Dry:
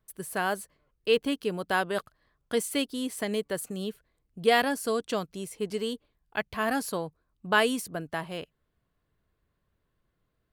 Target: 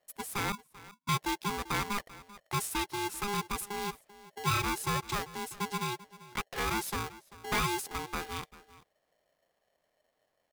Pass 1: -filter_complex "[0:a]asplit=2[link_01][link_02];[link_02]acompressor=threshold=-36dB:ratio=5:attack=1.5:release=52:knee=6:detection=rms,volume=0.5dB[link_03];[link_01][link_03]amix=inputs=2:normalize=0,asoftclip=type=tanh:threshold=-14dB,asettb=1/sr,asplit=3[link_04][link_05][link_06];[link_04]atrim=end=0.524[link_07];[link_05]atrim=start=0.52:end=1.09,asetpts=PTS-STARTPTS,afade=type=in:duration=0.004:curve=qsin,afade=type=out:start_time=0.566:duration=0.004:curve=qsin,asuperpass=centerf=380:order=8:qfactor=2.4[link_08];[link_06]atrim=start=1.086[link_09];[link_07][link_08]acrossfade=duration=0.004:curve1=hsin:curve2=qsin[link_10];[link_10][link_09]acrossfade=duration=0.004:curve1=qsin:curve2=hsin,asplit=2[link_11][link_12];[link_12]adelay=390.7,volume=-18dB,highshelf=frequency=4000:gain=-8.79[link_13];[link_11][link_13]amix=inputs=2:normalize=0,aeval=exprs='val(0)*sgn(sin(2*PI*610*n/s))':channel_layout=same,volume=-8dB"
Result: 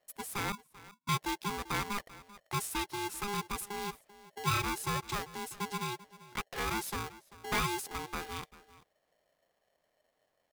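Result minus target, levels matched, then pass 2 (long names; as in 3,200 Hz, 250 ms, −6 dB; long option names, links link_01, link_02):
downward compressor: peak gain reduction +9.5 dB
-filter_complex "[0:a]asplit=2[link_01][link_02];[link_02]acompressor=threshold=-24dB:ratio=5:attack=1.5:release=52:knee=6:detection=rms,volume=0.5dB[link_03];[link_01][link_03]amix=inputs=2:normalize=0,asoftclip=type=tanh:threshold=-14dB,asettb=1/sr,asplit=3[link_04][link_05][link_06];[link_04]atrim=end=0.524[link_07];[link_05]atrim=start=0.52:end=1.09,asetpts=PTS-STARTPTS,afade=type=in:duration=0.004:curve=qsin,afade=type=out:start_time=0.566:duration=0.004:curve=qsin,asuperpass=centerf=380:order=8:qfactor=2.4[link_08];[link_06]atrim=start=1.086[link_09];[link_07][link_08]acrossfade=duration=0.004:curve1=hsin:curve2=qsin[link_10];[link_10][link_09]acrossfade=duration=0.004:curve1=qsin:curve2=hsin,asplit=2[link_11][link_12];[link_12]adelay=390.7,volume=-18dB,highshelf=frequency=4000:gain=-8.79[link_13];[link_11][link_13]amix=inputs=2:normalize=0,aeval=exprs='val(0)*sgn(sin(2*PI*610*n/s))':channel_layout=same,volume=-8dB"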